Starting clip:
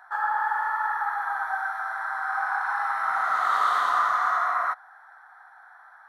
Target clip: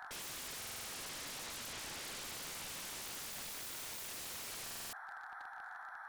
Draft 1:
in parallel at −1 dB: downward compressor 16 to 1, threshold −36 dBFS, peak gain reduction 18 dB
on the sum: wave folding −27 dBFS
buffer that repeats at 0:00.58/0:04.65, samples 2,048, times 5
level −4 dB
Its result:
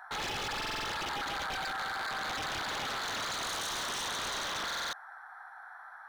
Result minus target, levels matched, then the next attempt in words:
wave folding: distortion −26 dB
in parallel at −1 dB: downward compressor 16 to 1, threshold −36 dBFS, peak gain reduction 18 dB
on the sum: wave folding −37 dBFS
buffer that repeats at 0:00.58/0:04.65, samples 2,048, times 5
level −4 dB

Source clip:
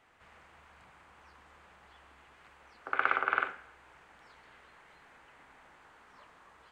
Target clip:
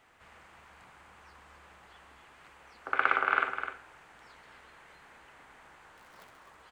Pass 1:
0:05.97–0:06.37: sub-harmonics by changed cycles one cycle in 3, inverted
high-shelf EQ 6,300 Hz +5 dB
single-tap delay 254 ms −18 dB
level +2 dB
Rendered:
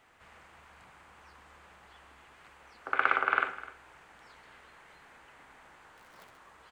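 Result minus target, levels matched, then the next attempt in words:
echo-to-direct −9 dB
0:05.97–0:06.37: sub-harmonics by changed cycles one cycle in 3, inverted
high-shelf EQ 6,300 Hz +5 dB
single-tap delay 254 ms −9 dB
level +2 dB

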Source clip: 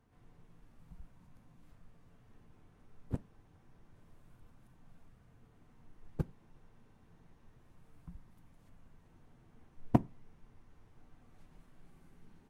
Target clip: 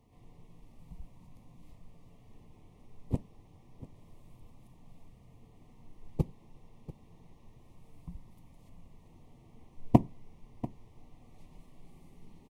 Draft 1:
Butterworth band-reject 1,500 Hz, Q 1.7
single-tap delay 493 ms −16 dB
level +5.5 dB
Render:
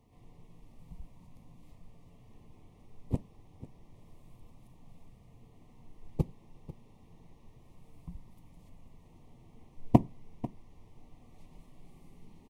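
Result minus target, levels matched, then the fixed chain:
echo 197 ms early
Butterworth band-reject 1,500 Hz, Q 1.7
single-tap delay 690 ms −16 dB
level +5.5 dB

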